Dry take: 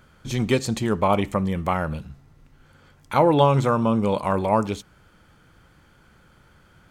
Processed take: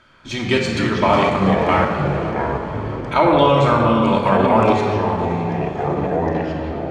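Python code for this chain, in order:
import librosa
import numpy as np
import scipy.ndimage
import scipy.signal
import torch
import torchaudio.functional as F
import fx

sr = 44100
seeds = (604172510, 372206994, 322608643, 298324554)

p1 = scipy.signal.sosfilt(scipy.signal.butter(2, 3700.0, 'lowpass', fs=sr, output='sos'), x)
p2 = fx.tilt_eq(p1, sr, slope=2.5)
p3 = fx.echo_diffused(p2, sr, ms=558, feedback_pct=48, wet_db=-12.5)
p4 = fx.room_shoebox(p3, sr, seeds[0], volume_m3=2300.0, walls='mixed', distance_m=2.8)
p5 = fx.level_steps(p4, sr, step_db=10)
p6 = p4 + (p5 * 10.0 ** (2.0 / 20.0))
p7 = fx.echo_pitch(p6, sr, ms=105, semitones=-5, count=3, db_per_echo=-6.0)
y = p7 * 10.0 ** (-3.0 / 20.0)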